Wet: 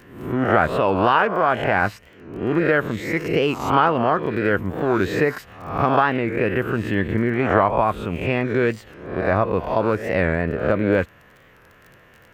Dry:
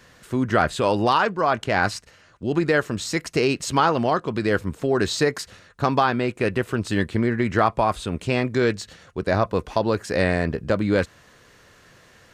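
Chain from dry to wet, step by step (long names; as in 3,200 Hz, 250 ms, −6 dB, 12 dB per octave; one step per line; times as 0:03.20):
peak hold with a rise ahead of every peak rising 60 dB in 0.64 s
flat-topped bell 6,200 Hz −16 dB
surface crackle 21 per second −37 dBFS
wow of a warped record 45 rpm, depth 160 cents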